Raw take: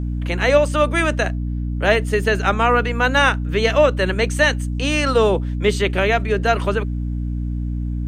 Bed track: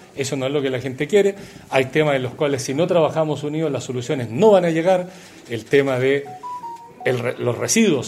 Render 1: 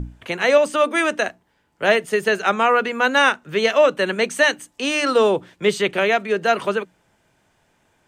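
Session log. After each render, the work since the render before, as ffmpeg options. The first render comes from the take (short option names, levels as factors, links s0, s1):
-af "bandreject=f=60:t=h:w=6,bandreject=f=120:t=h:w=6,bandreject=f=180:t=h:w=6,bandreject=f=240:t=h:w=6,bandreject=f=300:t=h:w=6"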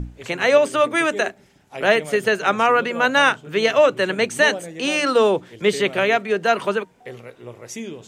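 -filter_complex "[1:a]volume=0.15[s0];[0:a][s0]amix=inputs=2:normalize=0"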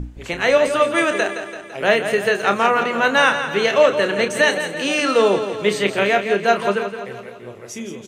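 -filter_complex "[0:a]asplit=2[s0][s1];[s1]adelay=30,volume=0.355[s2];[s0][s2]amix=inputs=2:normalize=0,aecho=1:1:168|336|504|672|840|1008|1176:0.335|0.188|0.105|0.0588|0.0329|0.0184|0.0103"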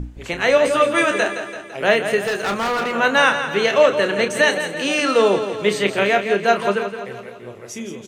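-filter_complex "[0:a]asettb=1/sr,asplit=3[s0][s1][s2];[s0]atrim=end=0.634[s3];[s1]atrim=start=0.63:end=1.63,asetpts=PTS-STARTPTS,afade=t=in:d=0.004:c=qsin,afade=t=out:st=0.996:d=0.004:c=qsin,asplit=2[s4][s5];[s5]adelay=14,volume=0.531[s6];[s4][s6]amix=inputs=2:normalize=0,atrim=end_sample=44100[s7];[s2]atrim=start=1.626[s8];[s3][s7]acrossfade=d=0.004:c1=hsin:c2=qsin[s9];[s9][s8]acrossfade=d=0.004:c1=qsin:c2=hsin,asettb=1/sr,asplit=3[s10][s11][s12];[s10]atrim=end=2.274[s13];[s11]atrim=start=2.27:end=2.93,asetpts=PTS-STARTPTS,afade=t=in:d=0.004:c=qsin,afade=t=out:st=0.656:d=0.004:c=qsin,asoftclip=type=hard:threshold=0.119[s14];[s12]atrim=start=2.926[s15];[s13][s14]acrossfade=d=0.004:c1=hsin:c2=qsin[s16];[s16][s15]acrossfade=d=0.004:c1=qsin:c2=hsin"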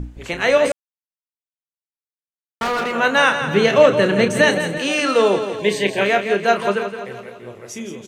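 -filter_complex "[0:a]asettb=1/sr,asplit=3[s0][s1][s2];[s0]atrim=end=3.414[s3];[s1]atrim=start=3.41:end=4.78,asetpts=PTS-STARTPTS,afade=t=in:d=0.004:c=qsin,afade=t=out:st=1.366:d=0.004:c=qsin,equalizer=f=110:t=o:w=2.5:g=13.5[s4];[s2]atrim=start=4.776[s5];[s3][s4]acrossfade=d=0.004:c1=hsin:c2=qsin[s6];[s6][s5]acrossfade=d=0.004:c1=qsin:c2=hsin,asettb=1/sr,asplit=3[s7][s8][s9];[s7]atrim=end=5.594[s10];[s8]atrim=start=5.59:end=6.01,asetpts=PTS-STARTPTS,afade=t=in:d=0.004:c=qsin,afade=t=out:st=0.416:d=0.004:c=qsin,asuperstop=centerf=1300:order=20:qfactor=3.7[s11];[s9]atrim=start=6.006[s12];[s10][s11]acrossfade=d=0.004:c1=hsin:c2=qsin[s13];[s13][s12]acrossfade=d=0.004:c1=qsin:c2=hsin,asplit=3[s14][s15][s16];[s14]atrim=end=0.72,asetpts=PTS-STARTPTS,afade=t=out:st=0.716:d=0.004:c=hsin[s17];[s15]atrim=start=0.72:end=2.61,asetpts=PTS-STARTPTS,volume=0[s18];[s16]atrim=start=2.61,asetpts=PTS-STARTPTS,afade=t=in:d=0.004:c=hsin[s19];[s17][s18][s19]concat=n=3:v=0:a=1"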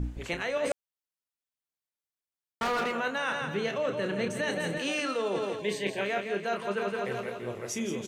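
-af "alimiter=limit=0.299:level=0:latency=1:release=460,areverse,acompressor=threshold=0.0398:ratio=6,areverse"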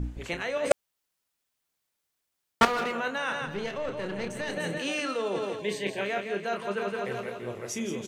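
-filter_complex "[0:a]asettb=1/sr,asplit=3[s0][s1][s2];[s0]atrim=end=3.464[s3];[s1]atrim=start=3.46:end=4.57,asetpts=PTS-STARTPTS,afade=t=in:d=0.004:c=qsin,afade=t=out:st=1.106:d=0.004:c=qsin,aeval=exprs='(tanh(15.8*val(0)+0.55)-tanh(0.55))/15.8':c=same[s4];[s2]atrim=start=4.566[s5];[s3][s4]acrossfade=d=0.004:c1=hsin:c2=qsin[s6];[s6][s5]acrossfade=d=0.004:c1=qsin:c2=hsin,asplit=3[s7][s8][s9];[s7]atrim=end=0.712[s10];[s8]atrim=start=0.708:end=2.652,asetpts=PTS-STARTPTS,volume=3.98[s11];[s9]atrim=start=2.648[s12];[s10][s11]acrossfade=d=0.004:c1=hsin:c2=hsin[s13];[s13][s12]acrossfade=d=0.004:c1=hsin:c2=hsin"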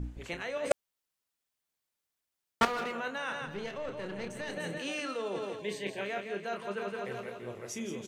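-af "volume=0.531"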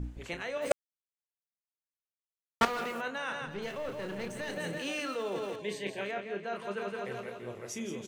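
-filter_complex "[0:a]asplit=3[s0][s1][s2];[s0]afade=t=out:st=0.61:d=0.02[s3];[s1]acrusher=bits=7:mix=0:aa=0.5,afade=t=in:st=0.61:d=0.02,afade=t=out:st=3:d=0.02[s4];[s2]afade=t=in:st=3:d=0.02[s5];[s3][s4][s5]amix=inputs=3:normalize=0,asettb=1/sr,asplit=3[s6][s7][s8];[s6]atrim=end=3.624[s9];[s7]atrim=start=3.62:end=5.56,asetpts=PTS-STARTPTS,afade=t=in:d=0.004:c=qsin,afade=t=out:st=1.936:d=0.004:c=qsin,aeval=exprs='val(0)+0.5*0.00355*sgn(val(0))':c=same[s10];[s8]atrim=start=5.556[s11];[s9][s10]acrossfade=d=0.004:c1=hsin:c2=qsin[s12];[s12][s11]acrossfade=d=0.004:c1=qsin:c2=hsin,asettb=1/sr,asplit=3[s13][s14][s15];[s13]atrim=end=6.114[s16];[s14]atrim=start=6.11:end=6.55,asetpts=PTS-STARTPTS,afade=t=in:d=0.004:c=qsin,afade=t=out:st=0.436:d=0.004:c=qsin,aemphasis=mode=reproduction:type=50kf[s17];[s15]atrim=start=6.546[s18];[s16][s17]acrossfade=d=0.004:c1=hsin:c2=qsin[s19];[s19][s18]acrossfade=d=0.004:c1=qsin:c2=hsin"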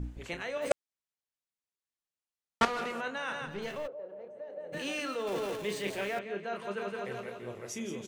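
-filter_complex "[0:a]asettb=1/sr,asplit=3[s0][s1][s2];[s0]atrim=end=0.694[s3];[s1]atrim=start=0.69:end=3.28,asetpts=PTS-STARTPTS,afade=t=in:d=0.004:c=qsin,afade=t=out:st=2.586:d=0.004:c=qsin,lowpass=10000[s4];[s2]atrim=start=3.276[s5];[s3][s4]acrossfade=d=0.004:c1=hsin:c2=qsin[s6];[s6][s5]acrossfade=d=0.004:c1=qsin:c2=hsin,asplit=3[s7][s8][s9];[s7]afade=t=out:st=3.86:d=0.02[s10];[s8]bandpass=f=570:t=q:w=4.6,afade=t=in:st=3.86:d=0.02,afade=t=out:st=4.72:d=0.02[s11];[s9]afade=t=in:st=4.72:d=0.02[s12];[s10][s11][s12]amix=inputs=3:normalize=0,asettb=1/sr,asplit=3[s13][s14][s15];[s13]atrim=end=5.274[s16];[s14]atrim=start=5.27:end=6.19,asetpts=PTS-STARTPTS,afade=t=in:d=0.004:c=qsin,afade=t=out:st=0.916:d=0.004:c=qsin,aeval=exprs='val(0)+0.5*0.00944*sgn(val(0))':c=same[s17];[s15]atrim=start=6.186[s18];[s16][s17]acrossfade=d=0.004:c1=hsin:c2=qsin[s19];[s19][s18]acrossfade=d=0.004:c1=qsin:c2=hsin"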